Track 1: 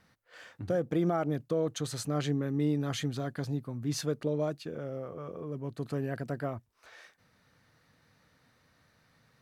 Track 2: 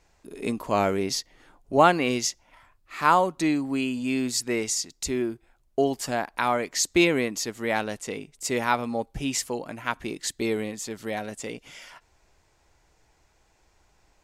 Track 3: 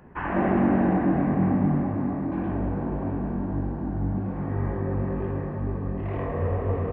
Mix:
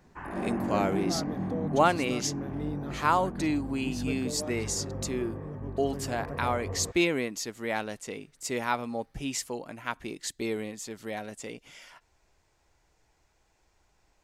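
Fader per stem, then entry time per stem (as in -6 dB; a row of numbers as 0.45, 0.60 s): -6.5, -5.0, -10.5 dB; 0.00, 0.00, 0.00 s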